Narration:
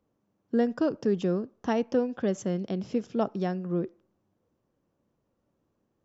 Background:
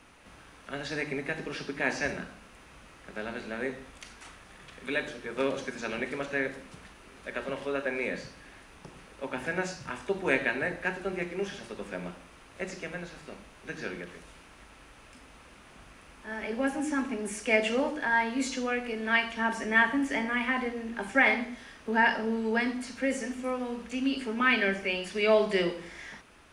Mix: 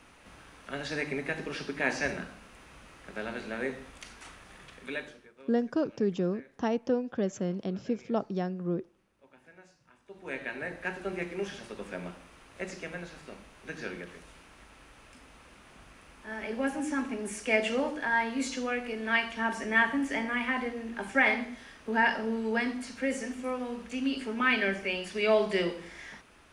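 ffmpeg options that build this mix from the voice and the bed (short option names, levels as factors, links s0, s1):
-filter_complex "[0:a]adelay=4950,volume=0.75[s0];[1:a]volume=13.3,afade=t=out:st=4.57:d=0.76:silence=0.0630957,afade=t=in:st=10.04:d=1.07:silence=0.0749894[s1];[s0][s1]amix=inputs=2:normalize=0"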